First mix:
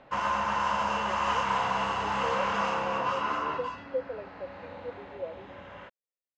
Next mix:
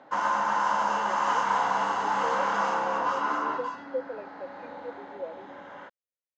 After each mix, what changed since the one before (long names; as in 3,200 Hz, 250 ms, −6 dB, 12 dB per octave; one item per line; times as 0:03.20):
background: add loudspeaker in its box 210–9,800 Hz, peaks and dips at 290 Hz +6 dB, 840 Hz +6 dB, 1,500 Hz +4 dB, 2,600 Hz −9 dB, 6,500 Hz +4 dB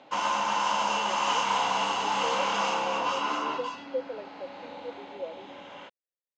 background: add high shelf with overshoot 2,100 Hz +6.5 dB, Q 3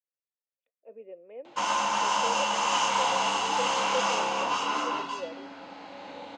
background: entry +1.45 s
master: remove high-frequency loss of the air 71 metres